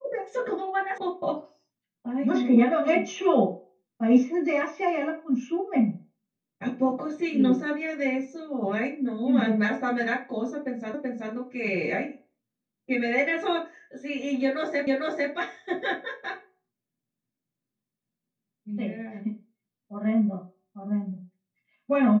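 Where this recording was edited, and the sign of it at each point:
0.98 s: sound stops dead
10.94 s: repeat of the last 0.38 s
14.87 s: repeat of the last 0.45 s

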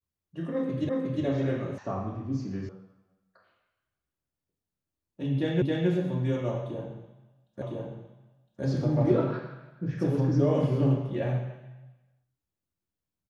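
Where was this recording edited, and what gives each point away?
0.89 s: repeat of the last 0.36 s
1.78 s: sound stops dead
2.69 s: sound stops dead
5.62 s: repeat of the last 0.27 s
7.62 s: repeat of the last 1.01 s

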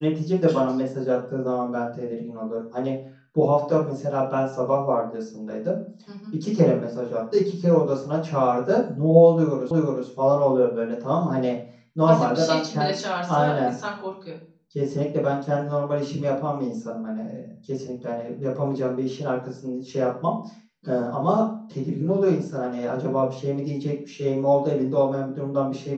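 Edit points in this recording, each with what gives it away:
9.71 s: repeat of the last 0.36 s

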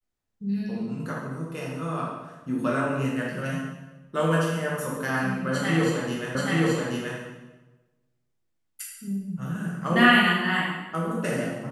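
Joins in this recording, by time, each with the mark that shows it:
6.35 s: repeat of the last 0.83 s

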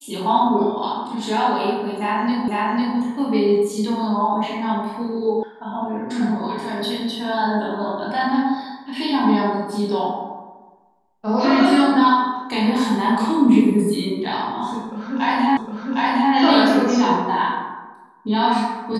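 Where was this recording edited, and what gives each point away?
2.48 s: repeat of the last 0.5 s
5.43 s: sound stops dead
15.57 s: repeat of the last 0.76 s

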